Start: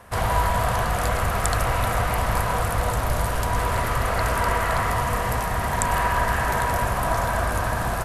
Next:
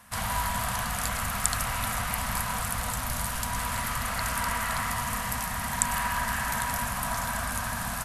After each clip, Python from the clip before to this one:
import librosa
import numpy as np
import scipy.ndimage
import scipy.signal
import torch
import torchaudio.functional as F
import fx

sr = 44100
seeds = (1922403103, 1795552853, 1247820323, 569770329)

y = fx.curve_eq(x, sr, hz=(120.0, 240.0, 340.0, 910.0, 8300.0), db=(0, 8, -13, 3, 13))
y = y * 10.0 ** (-10.5 / 20.0)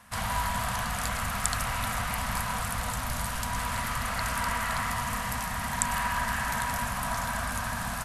y = fx.high_shelf(x, sr, hz=10000.0, db=-8.0)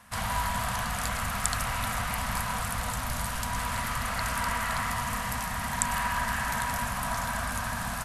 y = x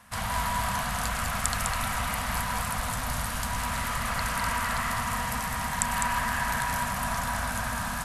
y = x + 10.0 ** (-5.0 / 20.0) * np.pad(x, (int(204 * sr / 1000.0), 0))[:len(x)]